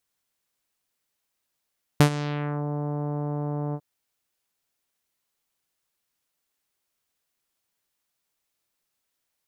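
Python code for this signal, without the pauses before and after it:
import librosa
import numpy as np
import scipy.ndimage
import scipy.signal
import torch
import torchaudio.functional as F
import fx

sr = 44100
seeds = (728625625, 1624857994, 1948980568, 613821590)

y = fx.sub_voice(sr, note=50, wave='saw', cutoff_hz=950.0, q=0.91, env_oct=4.0, env_s=0.63, attack_ms=2.3, decay_s=0.09, sustain_db=-16.0, release_s=0.06, note_s=1.74, slope=24)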